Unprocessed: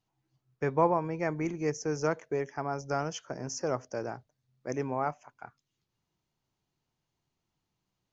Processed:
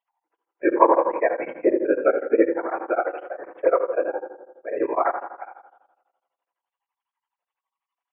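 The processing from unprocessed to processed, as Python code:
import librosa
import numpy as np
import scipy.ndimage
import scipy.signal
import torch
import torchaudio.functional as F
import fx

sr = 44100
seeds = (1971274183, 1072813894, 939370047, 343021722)

p1 = fx.sine_speech(x, sr)
p2 = scipy.signal.sosfilt(scipy.signal.ellip(4, 1.0, 40, 440.0, 'highpass', fs=sr, output='sos'), p1)
p3 = fx.high_shelf(p2, sr, hz=2600.0, db=-7.5)
p4 = fx.level_steps(p3, sr, step_db=18)
p5 = p3 + F.gain(torch.from_numpy(p4), -1.5).numpy()
p6 = fx.whisperise(p5, sr, seeds[0])
p7 = p6 + fx.echo_wet_lowpass(p6, sr, ms=73, feedback_pct=72, hz=820.0, wet_db=-20.0, dry=0)
p8 = fx.rev_fdn(p7, sr, rt60_s=1.0, lf_ratio=1.0, hf_ratio=0.35, size_ms=18.0, drr_db=1.5)
p9 = p8 * np.abs(np.cos(np.pi * 12.0 * np.arange(len(p8)) / sr))
y = F.gain(torch.from_numpy(p9), 8.5).numpy()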